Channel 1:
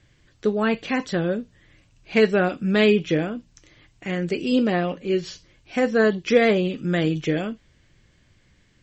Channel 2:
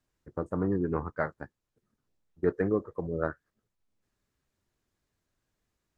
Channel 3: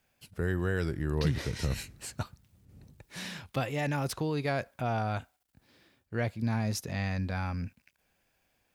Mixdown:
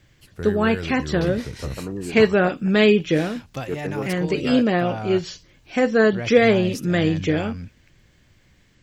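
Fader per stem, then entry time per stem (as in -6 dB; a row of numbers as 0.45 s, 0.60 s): +2.0 dB, -2.0 dB, +0.5 dB; 0.00 s, 1.25 s, 0.00 s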